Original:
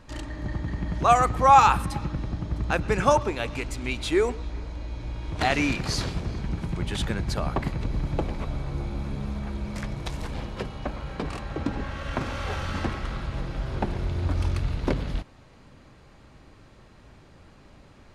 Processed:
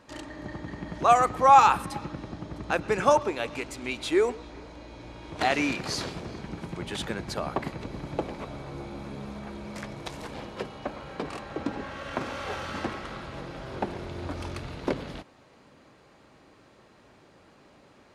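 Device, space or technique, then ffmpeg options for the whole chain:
filter by subtraction: -filter_complex "[0:a]asplit=2[link_01][link_02];[link_02]lowpass=410,volume=-1[link_03];[link_01][link_03]amix=inputs=2:normalize=0,volume=-2dB"

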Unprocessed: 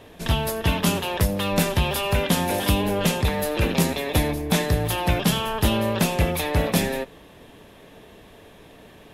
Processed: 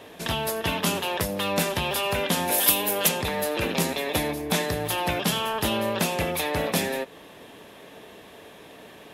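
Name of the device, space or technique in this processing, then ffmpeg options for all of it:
parallel compression: -filter_complex "[0:a]asplit=3[link_01][link_02][link_03];[link_01]afade=type=out:start_time=2.51:duration=0.02[link_04];[link_02]aemphasis=mode=production:type=bsi,afade=type=in:start_time=2.51:duration=0.02,afade=type=out:start_time=3.07:duration=0.02[link_05];[link_03]afade=type=in:start_time=3.07:duration=0.02[link_06];[link_04][link_05][link_06]amix=inputs=3:normalize=0,asplit=2[link_07][link_08];[link_08]acompressor=threshold=-32dB:ratio=6,volume=-0.5dB[link_09];[link_07][link_09]amix=inputs=2:normalize=0,highpass=frequency=290:poles=1,volume=-2.5dB"

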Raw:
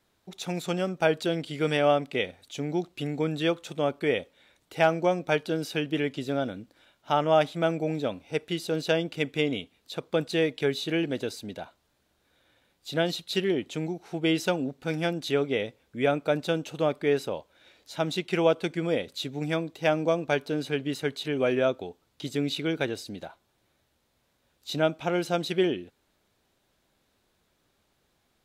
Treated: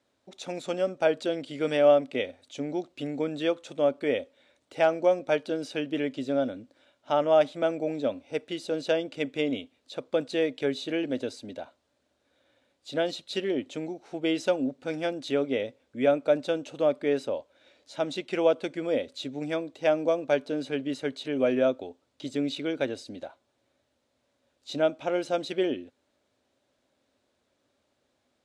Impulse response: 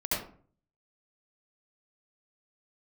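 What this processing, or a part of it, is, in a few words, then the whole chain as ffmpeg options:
car door speaker: -af "highpass=82,equalizer=frequency=170:width_type=q:width=4:gain=-9,equalizer=frequency=260:width_type=q:width=4:gain=8,equalizer=frequency=570:width_type=q:width=4:gain=9,lowpass=frequency=9300:width=0.5412,lowpass=frequency=9300:width=1.3066,volume=-4dB"

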